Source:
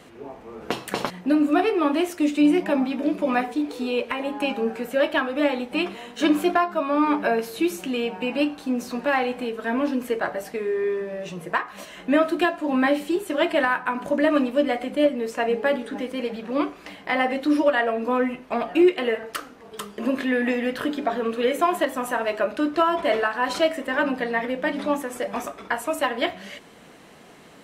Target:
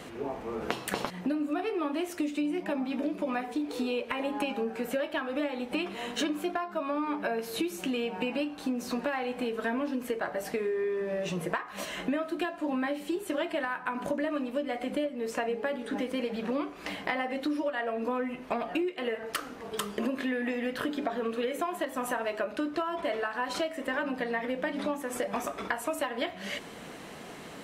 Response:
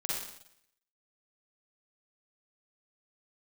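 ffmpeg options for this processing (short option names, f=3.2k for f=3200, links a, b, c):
-af "acompressor=threshold=-32dB:ratio=12,volume=4dB"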